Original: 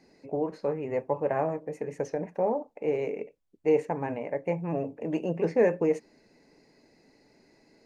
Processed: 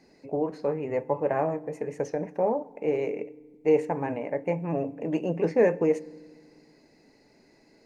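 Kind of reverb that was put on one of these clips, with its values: FDN reverb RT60 1.5 s, low-frequency decay 1.45×, high-frequency decay 0.7×, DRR 20 dB; trim +1.5 dB

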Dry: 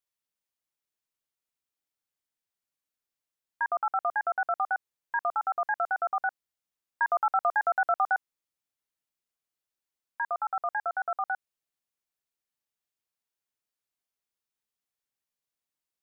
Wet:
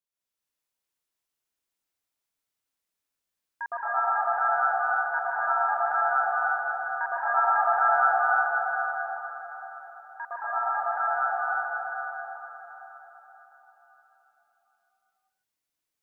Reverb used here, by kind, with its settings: plate-style reverb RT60 4.5 s, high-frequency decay 0.95×, pre-delay 110 ms, DRR -10 dB; trim -6 dB

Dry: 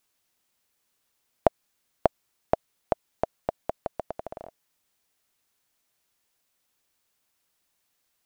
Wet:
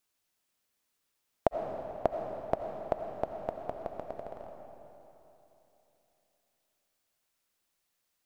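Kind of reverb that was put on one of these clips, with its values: algorithmic reverb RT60 3.3 s, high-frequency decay 0.9×, pre-delay 45 ms, DRR 3.5 dB; trim -6 dB

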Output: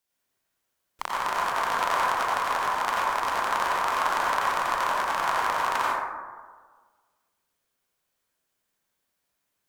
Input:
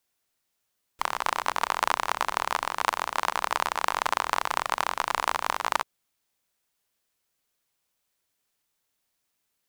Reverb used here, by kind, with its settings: plate-style reverb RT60 1.5 s, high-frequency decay 0.3×, pre-delay 75 ms, DRR -6 dB; trim -5 dB

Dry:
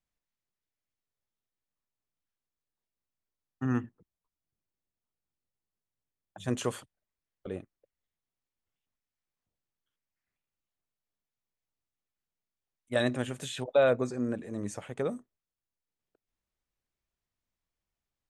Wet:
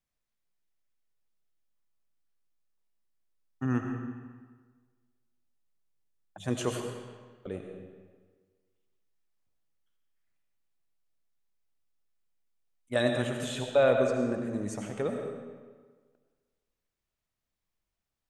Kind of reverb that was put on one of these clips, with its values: algorithmic reverb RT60 1.5 s, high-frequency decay 0.8×, pre-delay 50 ms, DRR 3.5 dB

